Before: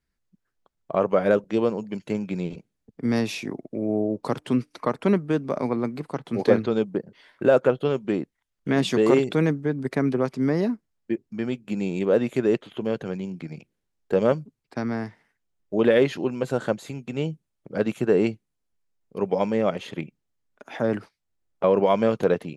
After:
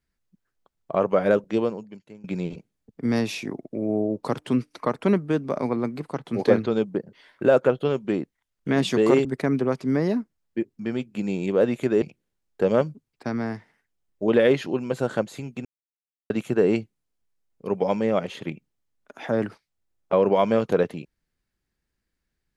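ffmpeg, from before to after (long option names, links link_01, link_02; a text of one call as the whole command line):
ffmpeg -i in.wav -filter_complex "[0:a]asplit=6[link_01][link_02][link_03][link_04][link_05][link_06];[link_01]atrim=end=2.24,asetpts=PTS-STARTPTS,afade=type=out:start_time=1.57:duration=0.67:curve=qua:silence=0.1[link_07];[link_02]atrim=start=2.24:end=9.252,asetpts=PTS-STARTPTS,afade=type=in:duration=0.004:curve=hsin:silence=0.1[link_08];[link_03]atrim=start=9.778:end=12.552[link_09];[link_04]atrim=start=13.528:end=17.16,asetpts=PTS-STARTPTS,afade=type=out:start_time=3.628:duration=0.004:curve=hsin[link_10];[link_05]atrim=start=17.16:end=17.81,asetpts=PTS-STARTPTS,volume=0[link_11];[link_06]atrim=start=17.81,asetpts=PTS-STARTPTS,afade=type=in:duration=0.004:curve=hsin[link_12];[link_07][link_08]concat=n=2:v=0:a=1[link_13];[link_13][link_09]acrossfade=duration=0.004:curve1=hsin:curve2=hsin[link_14];[link_10][link_11][link_12]concat=n=3:v=0:a=1[link_15];[link_14][link_15]acrossfade=duration=0.004:curve1=hsin:curve2=hsin" out.wav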